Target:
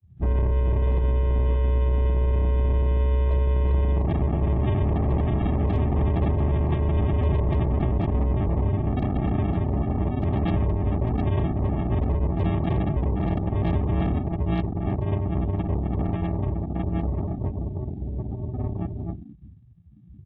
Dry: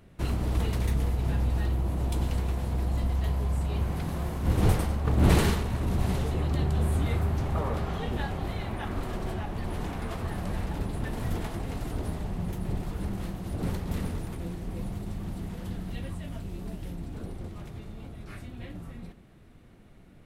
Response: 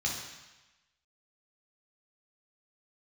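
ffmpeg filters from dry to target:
-filter_complex "[1:a]atrim=start_sample=2205,afade=t=out:st=0.21:d=0.01,atrim=end_sample=9702,asetrate=41013,aresample=44100[a];[0:a][a]afir=irnorm=-1:irlink=0,asplit=2[b][c];[c]aeval=exprs='(mod(1.58*val(0)+1,2)-1)/1.58':c=same,volume=-8.5dB[d];[b][d]amix=inputs=2:normalize=0,asplit=5[e][f][g][h][i];[f]adelay=176,afreqshift=56,volume=-16.5dB[j];[g]adelay=352,afreqshift=112,volume=-22.5dB[k];[h]adelay=528,afreqshift=168,volume=-28.5dB[l];[i]adelay=704,afreqshift=224,volume=-34.6dB[m];[e][j][k][l][m]amix=inputs=5:normalize=0,acompressor=threshold=-10dB:ratio=16,aresample=8000,acrusher=samples=16:mix=1:aa=0.000001,aresample=44100,alimiter=limit=-16.5dB:level=0:latency=1:release=11,adynamicequalizer=threshold=0.00398:dfrequency=1500:dqfactor=3.9:tfrequency=1500:tqfactor=3.9:attack=5:release=100:ratio=0.375:range=1.5:mode=cutabove:tftype=bell,afftdn=nr=35:nf=-30,bandreject=f=1.4k:w=5.9" -ar 24000 -c:a aac -b:a 24k

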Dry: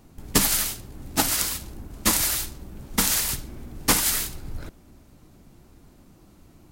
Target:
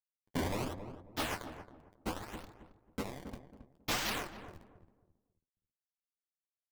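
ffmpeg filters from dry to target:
-filter_complex "[0:a]asettb=1/sr,asplit=3[a][b][c];[a]atrim=end=1.344[d];[b]atrim=start=1.34:end=3.53,asetpts=PTS-STARTPTS,afade=t=in:d=0.004:c=qsin,afade=t=out:st=2.186:d=0.004:c=qsin,lowpass=f=2.4k:p=1[e];[c]atrim=start=3.526[f];[d][e]acrossfade=d=0.004:c1=hsin:c2=qsin[g];[g][f]acrossfade=d=0.004:c1=qsin:c2=hsin,flanger=delay=17:depth=7.8:speed=0.38,acrusher=samples=19:mix=1:aa=0.000001:lfo=1:lforange=30.4:lforate=0.69,aeval=exprs='sgn(val(0))*max(abs(val(0))-0.02,0)':c=same,flanger=delay=3.5:depth=9.3:regen=33:speed=1.2:shape=triangular,asoftclip=type=tanh:threshold=-28dB,asplit=2[h][i];[i]adelay=271,lowpass=f=830:p=1,volume=-8dB,asplit=2[j][k];[k]adelay=271,lowpass=f=830:p=1,volume=0.31,asplit=2[l][m];[m]adelay=271,lowpass=f=830:p=1,volume=0.31,asplit=2[n][o];[o]adelay=271,lowpass=f=830:p=1,volume=0.31[p];[h][j][l][n][p]amix=inputs=5:normalize=0"

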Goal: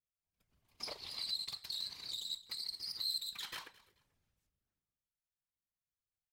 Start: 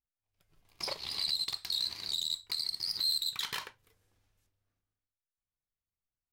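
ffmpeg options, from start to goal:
-af "aecho=1:1:217|434:0.0944|0.0217,afftfilt=real='hypot(re,im)*cos(2*PI*random(0))':imag='hypot(re,im)*sin(2*PI*random(1))':win_size=512:overlap=0.75,volume=-1.5dB"

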